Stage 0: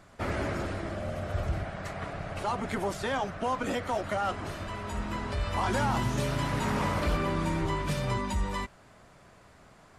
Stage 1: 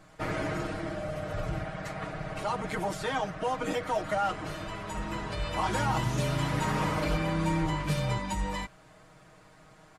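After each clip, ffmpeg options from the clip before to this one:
-af "aecho=1:1:6.4:0.83,volume=-2dB"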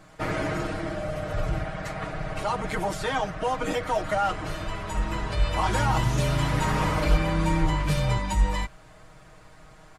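-af "asubboost=boost=2.5:cutoff=100,volume=4dB"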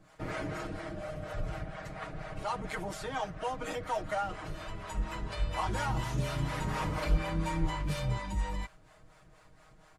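-filter_complex "[0:a]acrossover=split=470[a][b];[a]aeval=exprs='val(0)*(1-0.7/2+0.7/2*cos(2*PI*4.2*n/s))':c=same[c];[b]aeval=exprs='val(0)*(1-0.7/2-0.7/2*cos(2*PI*4.2*n/s))':c=same[d];[c][d]amix=inputs=2:normalize=0,volume=-5.5dB"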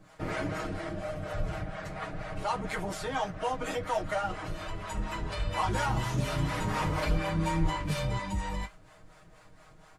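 -af "flanger=delay=9.8:depth=2.4:regen=-47:speed=1.8:shape=triangular,volume=7.5dB"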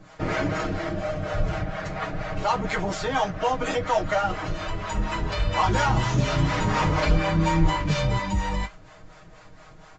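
-af "aresample=16000,aresample=44100,volume=7.5dB"

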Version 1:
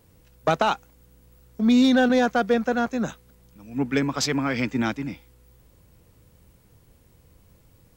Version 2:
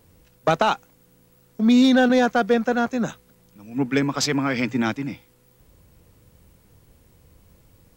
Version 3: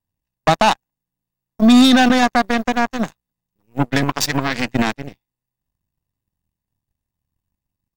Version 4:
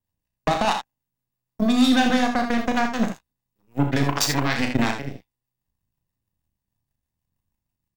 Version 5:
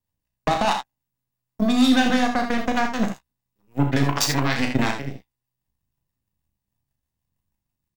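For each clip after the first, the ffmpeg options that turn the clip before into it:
-af "bandreject=f=60:t=h:w=6,bandreject=f=120:t=h:w=6,volume=2dB"
-af "aecho=1:1:1.1:0.71,aeval=exprs='0.531*(cos(1*acos(clip(val(0)/0.531,-1,1)))-cos(1*PI/2))+0.0211*(cos(6*acos(clip(val(0)/0.531,-1,1)))-cos(6*PI/2))+0.075*(cos(7*acos(clip(val(0)/0.531,-1,1)))-cos(7*PI/2))':c=same,alimiter=level_in=10.5dB:limit=-1dB:release=50:level=0:latency=1,volume=-2.5dB"
-filter_complex "[0:a]acompressor=threshold=-14dB:ratio=6,acrossover=split=490[a][b];[a]aeval=exprs='val(0)*(1-0.5/2+0.5/2*cos(2*PI*6.3*n/s))':c=same[c];[b]aeval=exprs='val(0)*(1-0.5/2-0.5/2*cos(2*PI*6.3*n/s))':c=same[d];[c][d]amix=inputs=2:normalize=0,aecho=1:1:35|64|80:0.447|0.316|0.355"
-filter_complex "[0:a]asplit=2[a][b];[b]adelay=15,volume=-12dB[c];[a][c]amix=inputs=2:normalize=0"

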